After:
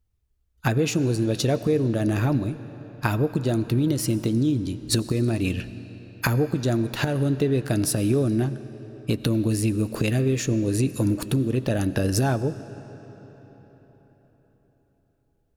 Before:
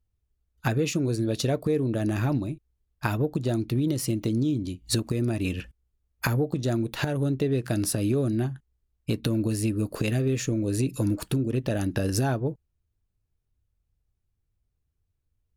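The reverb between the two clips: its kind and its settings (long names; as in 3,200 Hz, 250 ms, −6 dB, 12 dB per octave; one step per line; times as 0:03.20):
comb and all-pass reverb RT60 4.6 s, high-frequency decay 0.75×, pre-delay 50 ms, DRR 14 dB
level +3 dB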